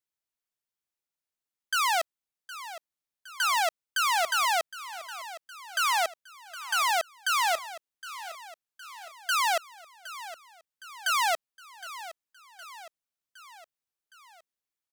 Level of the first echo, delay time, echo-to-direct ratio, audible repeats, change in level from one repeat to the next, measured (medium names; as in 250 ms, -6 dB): -15.0 dB, 764 ms, -13.5 dB, 4, -5.0 dB